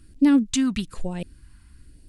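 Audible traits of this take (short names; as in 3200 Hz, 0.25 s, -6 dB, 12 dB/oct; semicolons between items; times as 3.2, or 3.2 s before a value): phasing stages 2, 1.1 Hz, lowest notch 460–1200 Hz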